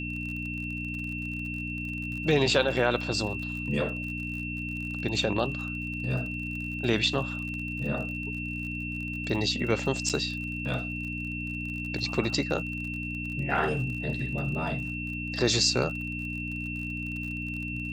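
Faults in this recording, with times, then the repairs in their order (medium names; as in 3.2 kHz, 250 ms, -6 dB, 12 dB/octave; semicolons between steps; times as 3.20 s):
crackle 43 per s -36 dBFS
hum 60 Hz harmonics 5 -36 dBFS
whine 2.7 kHz -35 dBFS
10.09–10.10 s: dropout 7.2 ms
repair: de-click; de-hum 60 Hz, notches 5; band-stop 2.7 kHz, Q 30; interpolate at 10.09 s, 7.2 ms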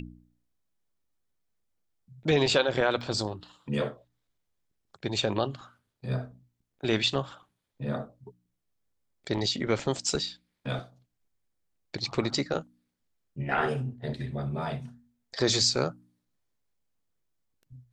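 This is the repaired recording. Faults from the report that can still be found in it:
nothing left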